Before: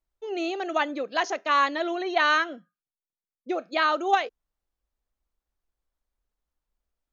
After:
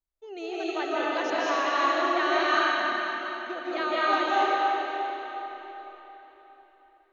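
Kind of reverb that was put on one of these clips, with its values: algorithmic reverb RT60 4.1 s, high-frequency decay 0.85×, pre-delay 120 ms, DRR -9 dB; trim -9 dB

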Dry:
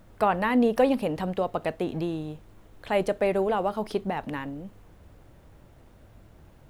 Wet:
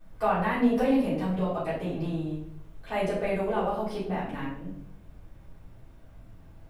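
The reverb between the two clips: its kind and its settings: simulated room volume 110 m³, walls mixed, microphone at 3.6 m; trim -15 dB

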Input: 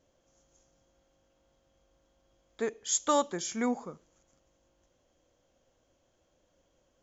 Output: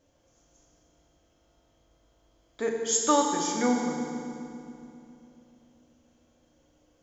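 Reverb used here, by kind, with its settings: FDN reverb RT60 2.7 s, low-frequency decay 1.35×, high-frequency decay 0.8×, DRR -0.5 dB; trim +1.5 dB

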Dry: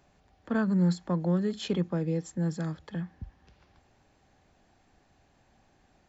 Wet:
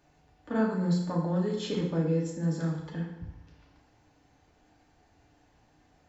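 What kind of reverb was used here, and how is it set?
FDN reverb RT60 0.89 s, low-frequency decay 0.95×, high-frequency decay 0.8×, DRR -3 dB; trim -4 dB

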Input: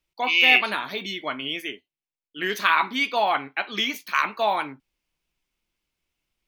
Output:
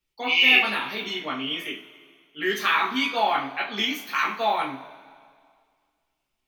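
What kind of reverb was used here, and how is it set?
two-slope reverb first 0.3 s, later 2 s, from -20 dB, DRR -4.5 dB; trim -6 dB

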